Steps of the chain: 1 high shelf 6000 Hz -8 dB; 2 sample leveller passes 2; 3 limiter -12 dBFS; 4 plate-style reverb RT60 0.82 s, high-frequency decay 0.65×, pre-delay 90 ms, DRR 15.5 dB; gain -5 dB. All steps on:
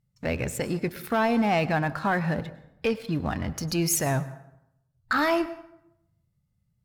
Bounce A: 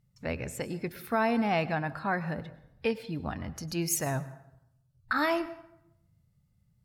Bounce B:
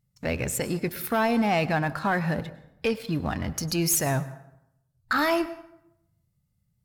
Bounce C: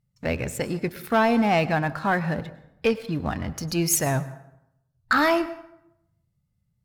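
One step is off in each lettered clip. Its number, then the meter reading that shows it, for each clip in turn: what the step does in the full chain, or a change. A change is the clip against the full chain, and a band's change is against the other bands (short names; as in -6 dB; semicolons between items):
2, crest factor change +3.5 dB; 1, 8 kHz band +2.5 dB; 3, crest factor change +2.5 dB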